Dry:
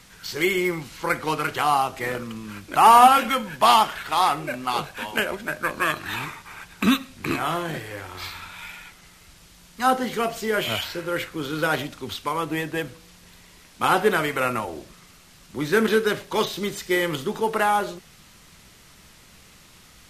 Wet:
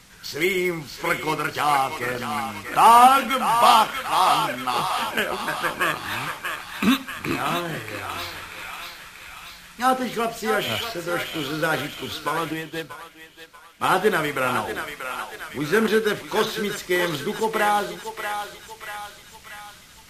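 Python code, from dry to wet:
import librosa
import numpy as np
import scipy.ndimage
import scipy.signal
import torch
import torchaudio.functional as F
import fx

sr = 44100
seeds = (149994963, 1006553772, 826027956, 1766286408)

p1 = x + fx.echo_thinned(x, sr, ms=636, feedback_pct=65, hz=850.0, wet_db=-5.5, dry=0)
y = fx.upward_expand(p1, sr, threshold_db=-39.0, expansion=1.5, at=(12.53, 13.91))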